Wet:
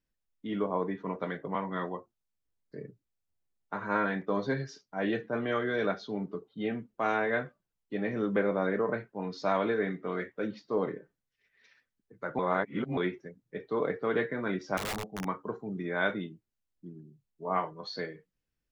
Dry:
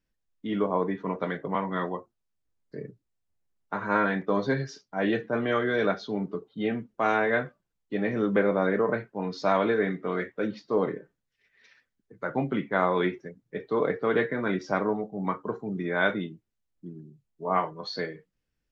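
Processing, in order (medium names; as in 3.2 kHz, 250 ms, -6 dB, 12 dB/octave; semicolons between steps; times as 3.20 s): 12.39–12.97 s: reverse; 14.77–15.25 s: integer overflow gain 24.5 dB; trim -4.5 dB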